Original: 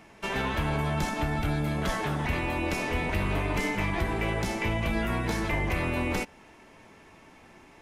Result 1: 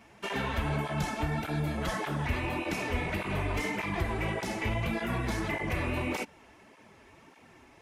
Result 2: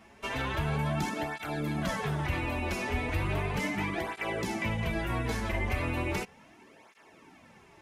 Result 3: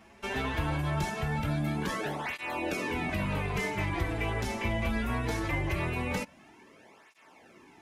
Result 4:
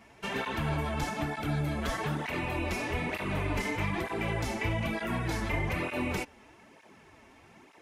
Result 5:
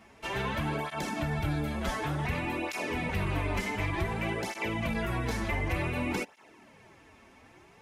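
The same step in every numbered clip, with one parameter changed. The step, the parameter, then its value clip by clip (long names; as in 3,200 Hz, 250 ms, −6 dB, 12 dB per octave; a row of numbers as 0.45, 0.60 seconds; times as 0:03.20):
through-zero flanger with one copy inverted, nulls at: 1.7, 0.36, 0.21, 1.1, 0.55 Hertz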